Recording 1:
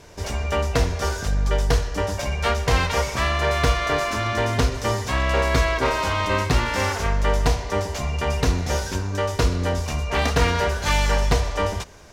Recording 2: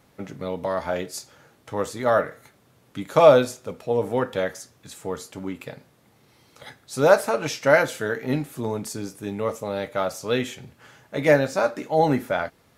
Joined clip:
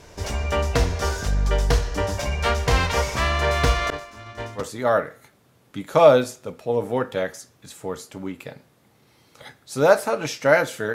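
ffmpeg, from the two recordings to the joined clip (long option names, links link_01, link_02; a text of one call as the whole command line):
ffmpeg -i cue0.wav -i cue1.wav -filter_complex "[0:a]asettb=1/sr,asplit=3[link_01][link_02][link_03];[link_01]atrim=end=3.904[link_04];[link_02]atrim=start=3.9:end=4.63,asetpts=PTS-STARTPTS,afade=type=in:duration=0.004:curve=qsin,afade=type=out:start_time=0.726:duration=0.004:curve=qsin,agate=range=-33dB:threshold=-14dB:ratio=3:release=100:detection=peak[link_05];[link_03]atrim=start=4.626[link_06];[link_04][link_05]acrossfade=duration=0.004:curve1=hsin:curve2=qsin[link_07];[link_07][link_06]acrossfade=duration=0.004:curve1=qsin:curve2=hsin,apad=whole_dur=10.94,atrim=end=10.94,atrim=end=4.63,asetpts=PTS-STARTPTS[link_08];[1:a]atrim=start=1.76:end=8.15,asetpts=PTS-STARTPTS[link_09];[link_08][link_09]acrossfade=duration=0.08:curve1=tri:curve2=tri" out.wav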